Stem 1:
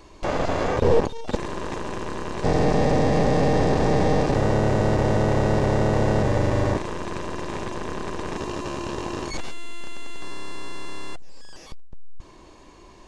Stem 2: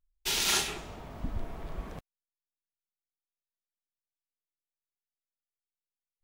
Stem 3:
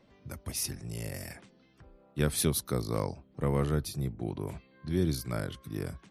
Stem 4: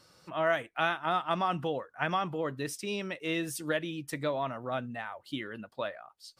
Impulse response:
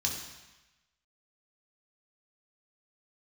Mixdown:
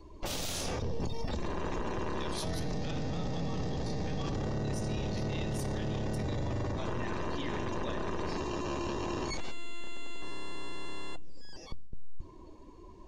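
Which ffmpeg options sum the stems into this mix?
-filter_complex "[0:a]volume=-1.5dB,asplit=2[a][b];[b]volume=-21dB[c];[1:a]volume=1dB[d];[2:a]bandpass=f=3.9k:t=q:w=0.95:csg=0,volume=-3.5dB,asplit=2[e][f];[f]volume=-5.5dB[g];[3:a]adelay=2050,volume=-3.5dB,asplit=2[h][i];[i]volume=-5dB[j];[4:a]atrim=start_sample=2205[k];[c][g][j]amix=inputs=3:normalize=0[l];[l][k]afir=irnorm=-1:irlink=0[m];[a][d][e][h][m]amix=inputs=5:normalize=0,acrossover=split=240|3000[n][o][p];[o]acompressor=threshold=-30dB:ratio=6[q];[n][q][p]amix=inputs=3:normalize=0,afftdn=nr=15:nf=-46,alimiter=level_in=2.5dB:limit=-24dB:level=0:latency=1:release=19,volume=-2.5dB"

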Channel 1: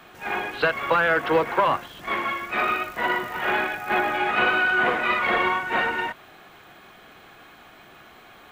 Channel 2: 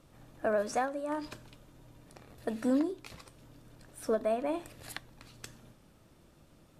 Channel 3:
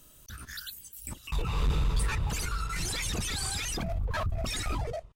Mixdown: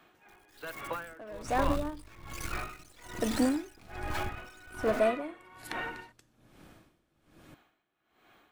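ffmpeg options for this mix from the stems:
-filter_complex "[0:a]volume=-13dB[a];[1:a]acontrast=46,aeval=exprs='clip(val(0),-1,0.0944)':c=same,adelay=750,volume=-0.5dB[b];[2:a]aeval=exprs='max(val(0),0)':c=same,acrusher=bits=6:mix=0:aa=0.000001,volume=-1dB[c];[a][b][c]amix=inputs=3:normalize=0,equalizer=f=310:w=3.8:g=5.5,aeval=exprs='val(0)*pow(10,-22*(0.5-0.5*cos(2*PI*1.2*n/s))/20)':c=same"

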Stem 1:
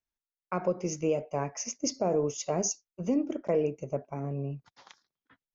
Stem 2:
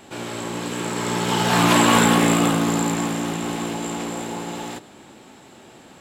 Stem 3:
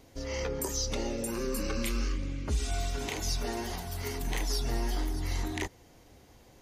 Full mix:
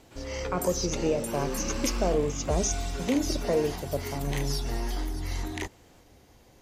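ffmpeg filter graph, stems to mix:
-filter_complex "[0:a]volume=1dB[a];[1:a]acompressor=threshold=-41dB:ratio=1.5,volume=-15.5dB[b];[2:a]volume=0dB[c];[a][b][c]amix=inputs=3:normalize=0"

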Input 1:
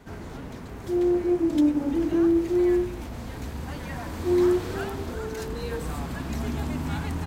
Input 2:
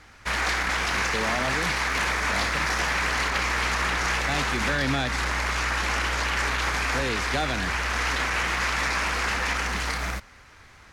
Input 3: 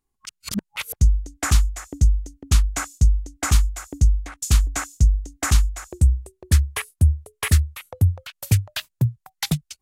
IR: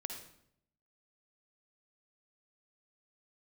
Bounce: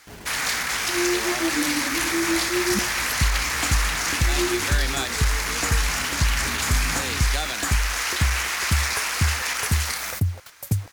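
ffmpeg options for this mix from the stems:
-filter_complex "[0:a]flanger=delay=15:depth=5.2:speed=1.4,volume=-1.5dB[a];[1:a]aemphasis=mode=production:type=riaa,volume=-3dB[b];[2:a]equalizer=f=2.6k:t=o:w=1.3:g=-14.5,adelay=2200,volume=-1dB[c];[a][c]amix=inputs=2:normalize=0,acrusher=bits=6:mix=0:aa=0.000001,acompressor=threshold=-18dB:ratio=6,volume=0dB[d];[b][d]amix=inputs=2:normalize=0"

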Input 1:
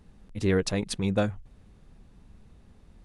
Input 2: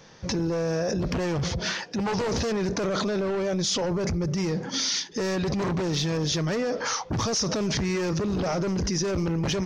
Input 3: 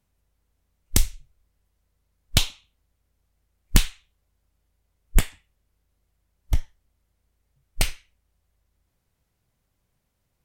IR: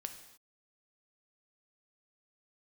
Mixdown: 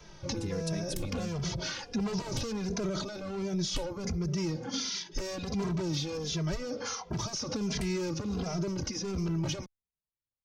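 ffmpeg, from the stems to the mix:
-filter_complex "[0:a]volume=1dB[a];[1:a]bandreject=f=1.8k:w=9.6,volume=0.5dB[b];[2:a]afwtdn=0.0141,volume=-8.5dB[c];[a][c]amix=inputs=2:normalize=0,alimiter=limit=-18.5dB:level=0:latency=1:release=182,volume=0dB[d];[b][d]amix=inputs=2:normalize=0,acrossover=split=280|4100[e][f][g];[e]acompressor=threshold=-30dB:ratio=4[h];[f]acompressor=threshold=-35dB:ratio=4[i];[g]acompressor=threshold=-35dB:ratio=4[j];[h][i][j]amix=inputs=3:normalize=0,asplit=2[k][l];[l]adelay=2.6,afreqshift=-1.4[m];[k][m]amix=inputs=2:normalize=1"

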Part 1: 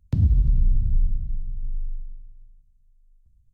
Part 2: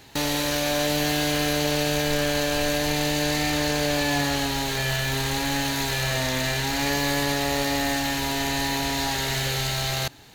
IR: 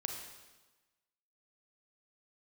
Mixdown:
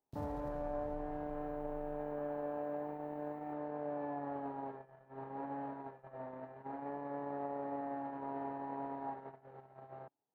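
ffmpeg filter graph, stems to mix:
-filter_complex "[0:a]alimiter=limit=-18.5dB:level=0:latency=1:release=361,volume=-5.5dB[a];[1:a]highpass=84,alimiter=limit=-21dB:level=0:latency=1:release=24,lowpass=f=1k:w=0.5412,lowpass=f=1k:w=1.3066,volume=-5.5dB[b];[a][b]amix=inputs=2:normalize=0,aemphasis=mode=production:type=bsi,agate=range=-29dB:threshold=-41dB:ratio=16:detection=peak,equalizer=f=64:w=0.51:g=-6.5"

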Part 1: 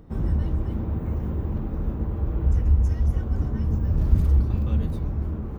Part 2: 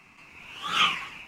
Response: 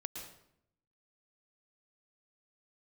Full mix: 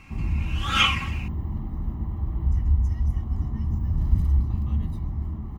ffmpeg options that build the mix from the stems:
-filter_complex "[0:a]aecho=1:1:1:0.84,volume=-7dB[a];[1:a]aecho=1:1:3.7:0.83,volume=0.5dB[b];[a][b]amix=inputs=2:normalize=0"

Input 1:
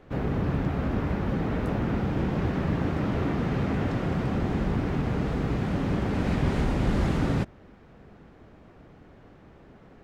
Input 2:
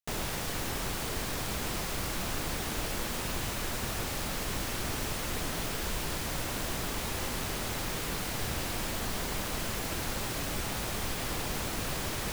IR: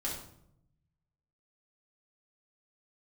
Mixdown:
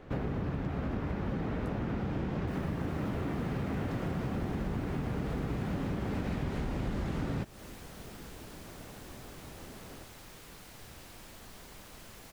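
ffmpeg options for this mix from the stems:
-filter_complex "[0:a]volume=1.5dB[a];[1:a]adelay=2400,volume=-16.5dB[b];[a][b]amix=inputs=2:normalize=0,acompressor=threshold=-31dB:ratio=6"

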